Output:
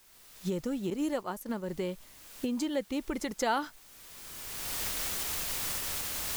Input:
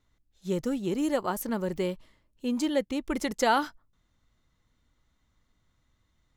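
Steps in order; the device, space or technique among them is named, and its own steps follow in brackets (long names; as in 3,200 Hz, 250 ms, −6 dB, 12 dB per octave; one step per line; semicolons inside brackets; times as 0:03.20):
cheap recorder with automatic gain (white noise bed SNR 24 dB; camcorder AGC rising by 23 dB per second)
0:00.90–0:01.69: downward expander −25 dBFS
level −5.5 dB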